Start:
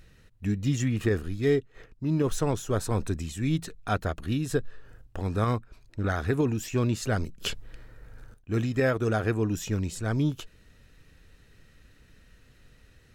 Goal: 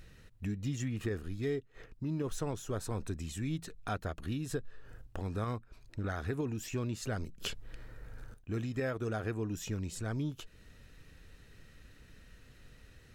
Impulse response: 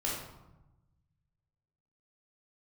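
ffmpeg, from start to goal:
-af "acompressor=threshold=-40dB:ratio=2"

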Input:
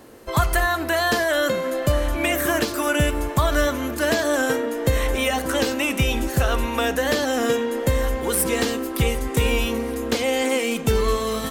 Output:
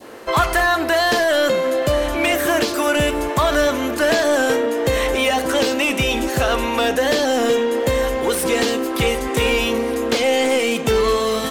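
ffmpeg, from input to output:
-filter_complex "[0:a]adynamicequalizer=threshold=0.0141:dfrequency=1400:dqfactor=0.74:tfrequency=1400:tqfactor=0.74:attack=5:release=100:ratio=0.375:range=4:mode=cutabove:tftype=bell,asplit=2[a][b];[b]highpass=f=720:p=1,volume=19dB,asoftclip=type=tanh:threshold=-6dB[c];[a][c]amix=inputs=2:normalize=0,lowpass=f=2.8k:p=1,volume=-6dB"

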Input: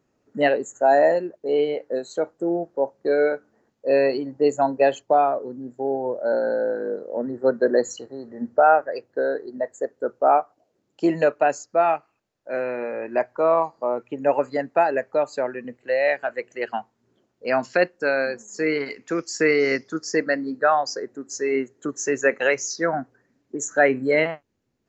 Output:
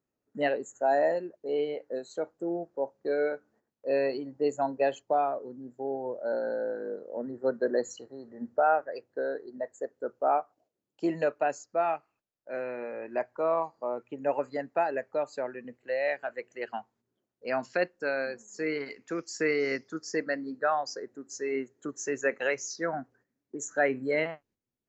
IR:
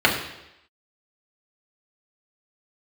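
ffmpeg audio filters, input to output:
-af "agate=range=-8dB:threshold=-54dB:ratio=16:detection=peak,volume=-8.5dB"

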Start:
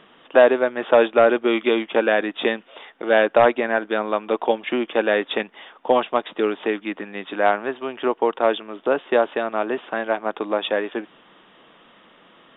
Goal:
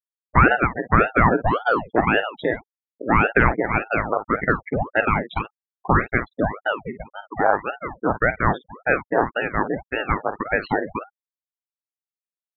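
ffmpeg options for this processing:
-filter_complex "[0:a]afftfilt=real='re*gte(hypot(re,im),0.126)':imag='im*gte(hypot(re,im),0.126)':win_size=1024:overlap=0.75,asplit=2[a][b];[b]aecho=0:1:11|49:0.168|0.251[c];[a][c]amix=inputs=2:normalize=0,crystalizer=i=8.5:c=0,asplit=2[d][e];[e]alimiter=limit=-6dB:level=0:latency=1:release=13,volume=1dB[f];[d][f]amix=inputs=2:normalize=0,asuperstop=centerf=2900:order=4:qfactor=0.82,aeval=exprs='val(0)*sin(2*PI*590*n/s+590*0.9/1.8*sin(2*PI*1.8*n/s))':c=same,volume=-5.5dB"

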